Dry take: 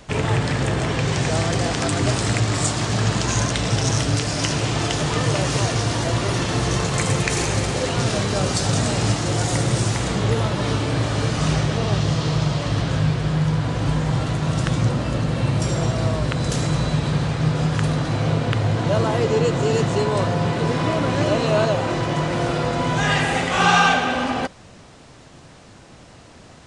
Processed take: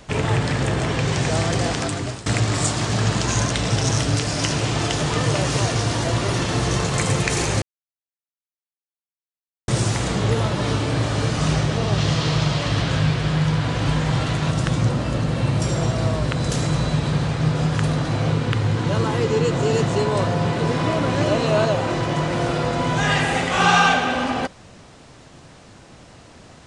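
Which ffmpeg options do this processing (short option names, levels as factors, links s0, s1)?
-filter_complex "[0:a]asettb=1/sr,asplit=3[s0][s1][s2];[s0]atrim=end=11.984[s3];[s1]atrim=start=11.98:end=14.51,asetpts=PTS-STARTPTS,afade=t=in:d=0.004:c=qsin,afade=t=out:st=2.526:d=0.004:c=qsin,equalizer=f=2800:t=o:w=2.4:g=5[s4];[s2]atrim=start=14.506[s5];[s3][s4]acrossfade=d=0.004:c1=hsin:c2=qsin[s6];[s6][s5]acrossfade=d=0.004:c1=qsin:c2=hsin,asettb=1/sr,asplit=3[s7][s8][s9];[s7]atrim=end=18.314[s10];[s8]atrim=start=18.31:end=19.51,asetpts=PTS-STARTPTS,afade=t=in:d=0.004:c=qsin,afade=t=out:st=1.196:d=0.004:c=qsin,equalizer=f=650:t=o:w=0.3:g=-10.5[s11];[s9]atrim=start=19.506[s12];[s10][s11]acrossfade=d=0.004:c1=hsin:c2=qsin[s13];[s13][s12]acrossfade=d=0.004:c1=qsin:c2=hsin,asplit=4[s14][s15][s16][s17];[s14]atrim=end=2.26,asetpts=PTS-STARTPTS,afade=t=out:st=1.7:d=0.56:silence=0.125893[s18];[s15]atrim=start=2.26:end=7.62,asetpts=PTS-STARTPTS,afade=t=in:d=0.004:c=hsin:silence=0.125893,afade=t=out:st=5.356:d=0.004:c=hsin[s19];[s16]atrim=start=7.62:end=9.68,asetpts=PTS-STARTPTS,volume=0[s20];[s17]atrim=start=9.68,asetpts=PTS-STARTPTS,afade=t=in:d=0.004:c=hsin[s21];[s18][s19][s20][s21]concat=n=4:v=0:a=1"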